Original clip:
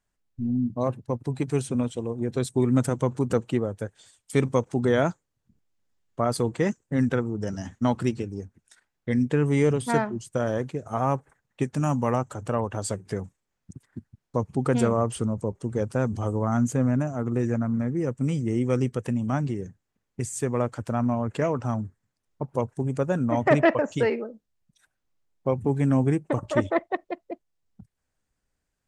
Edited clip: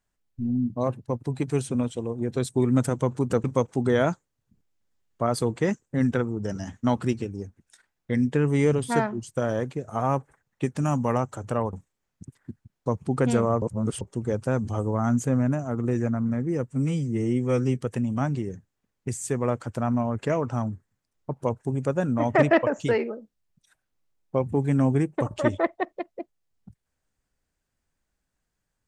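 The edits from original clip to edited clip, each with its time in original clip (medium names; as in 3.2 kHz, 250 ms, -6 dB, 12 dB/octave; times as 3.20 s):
3.44–4.42 s: delete
12.71–13.21 s: delete
15.10–15.49 s: reverse
18.15–18.87 s: stretch 1.5×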